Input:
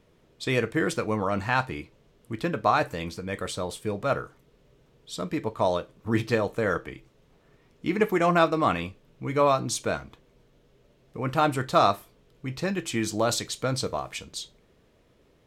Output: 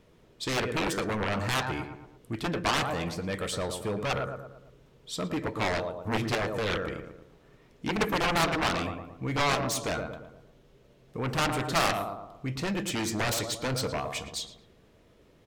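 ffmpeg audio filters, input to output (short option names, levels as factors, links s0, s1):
-filter_complex "[0:a]asplit=2[s0][s1];[s1]adelay=113,lowpass=f=1800:p=1,volume=0.355,asplit=2[s2][s3];[s3]adelay=113,lowpass=f=1800:p=1,volume=0.48,asplit=2[s4][s5];[s5]adelay=113,lowpass=f=1800:p=1,volume=0.48,asplit=2[s6][s7];[s7]adelay=113,lowpass=f=1800:p=1,volume=0.48,asplit=2[s8][s9];[s9]adelay=113,lowpass=f=1800:p=1,volume=0.48[s10];[s0][s2][s4][s6][s8][s10]amix=inputs=6:normalize=0,aeval=exprs='0.422*(cos(1*acos(clip(val(0)/0.422,-1,1)))-cos(1*PI/2))+0.133*(cos(7*acos(clip(val(0)/0.422,-1,1)))-cos(7*PI/2))':c=same,asoftclip=type=tanh:threshold=0.133"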